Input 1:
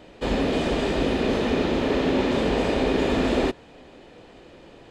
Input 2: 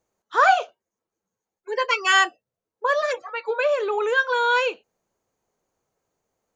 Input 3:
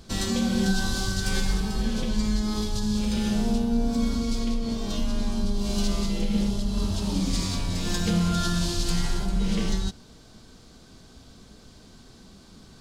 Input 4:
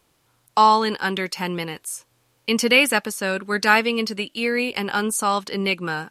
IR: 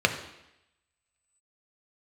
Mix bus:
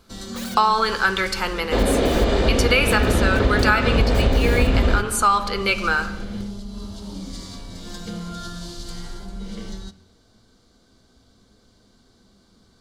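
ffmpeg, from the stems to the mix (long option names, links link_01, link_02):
-filter_complex "[0:a]asubboost=boost=12:cutoff=110,adelay=1500,volume=3dB,asplit=2[link_01][link_02];[link_02]volume=-17dB[link_03];[1:a]highpass=frequency=1200:width=0.5412,highpass=frequency=1200:width=1.3066,alimiter=limit=-17dB:level=0:latency=1,aeval=exprs='(mod(14.1*val(0)+1,2)-1)/14.1':channel_layout=same,volume=-8dB[link_04];[2:a]volume=-9dB,asplit=2[link_05][link_06];[link_06]volume=-19.5dB[link_07];[3:a]highpass=frequency=640:poles=1,equalizer=frequency=1300:width=4.6:gain=8,volume=-0.5dB,asplit=2[link_08][link_09];[link_09]volume=-12dB[link_10];[4:a]atrim=start_sample=2205[link_11];[link_03][link_07][link_10]amix=inputs=3:normalize=0[link_12];[link_12][link_11]afir=irnorm=-1:irlink=0[link_13];[link_01][link_04][link_05][link_08][link_13]amix=inputs=5:normalize=0,acompressor=threshold=-13dB:ratio=6"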